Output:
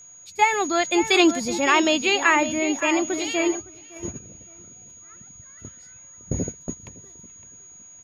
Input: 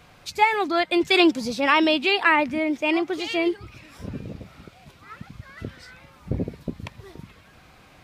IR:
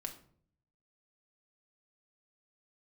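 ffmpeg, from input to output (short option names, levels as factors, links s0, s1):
-filter_complex "[0:a]aeval=exprs='val(0)+0.0251*sin(2*PI*6700*n/s)':c=same,asplit=2[s0][s1];[s1]adelay=561,lowpass=f=3000:p=1,volume=0.316,asplit=2[s2][s3];[s3]adelay=561,lowpass=f=3000:p=1,volume=0.3,asplit=2[s4][s5];[s5]adelay=561,lowpass=f=3000:p=1,volume=0.3[s6];[s0][s2][s4][s6]amix=inputs=4:normalize=0,agate=range=0.251:threshold=0.0398:ratio=16:detection=peak"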